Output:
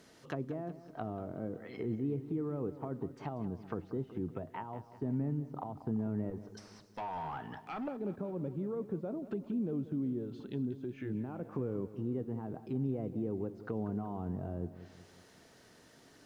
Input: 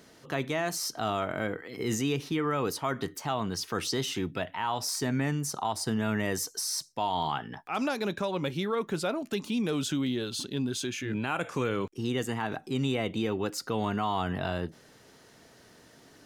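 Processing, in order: 6.30–7.88 s: hard clipper -31.5 dBFS, distortion -17 dB; low-pass that closes with the level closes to 450 Hz, closed at -28.5 dBFS; bit-crushed delay 187 ms, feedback 55%, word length 10-bit, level -14 dB; trim -4.5 dB

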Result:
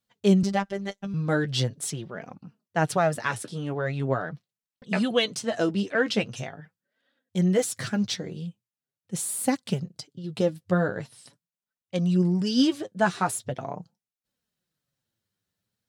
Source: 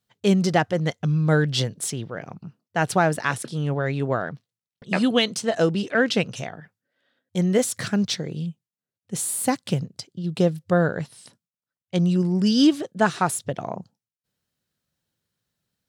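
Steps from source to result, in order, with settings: flange 0.42 Hz, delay 3.4 ms, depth 7.5 ms, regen +24%; 0.43–1.14 s: robot voice 198 Hz

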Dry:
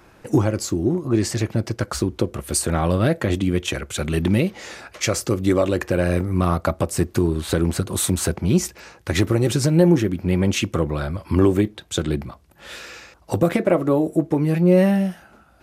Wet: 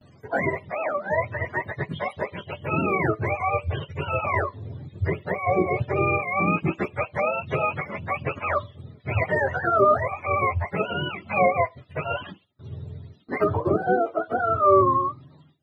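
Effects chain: spectrum inverted on a logarithmic axis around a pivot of 460 Hz; gate with hold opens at -42 dBFS; trim -1.5 dB

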